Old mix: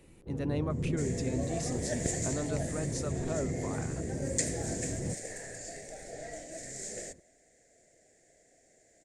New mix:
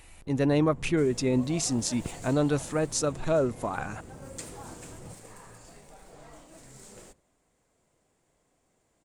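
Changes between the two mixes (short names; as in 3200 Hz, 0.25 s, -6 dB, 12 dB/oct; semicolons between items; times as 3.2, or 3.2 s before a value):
speech +11.0 dB; first sound: add resonant low shelf 630 Hz -10.5 dB, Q 1.5; second sound: remove EQ curve 180 Hz 0 dB, 680 Hz +11 dB, 1100 Hz -23 dB, 1800 Hz +14 dB, 2900 Hz -1 dB, 6900 Hz +14 dB, 16000 Hz -11 dB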